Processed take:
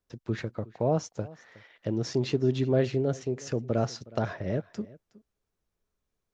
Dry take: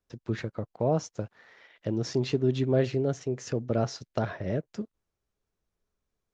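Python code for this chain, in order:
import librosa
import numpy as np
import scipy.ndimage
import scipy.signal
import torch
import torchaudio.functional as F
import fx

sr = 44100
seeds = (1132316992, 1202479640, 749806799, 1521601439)

y = x + 10.0 ** (-21.0 / 20.0) * np.pad(x, (int(366 * sr / 1000.0), 0))[:len(x)]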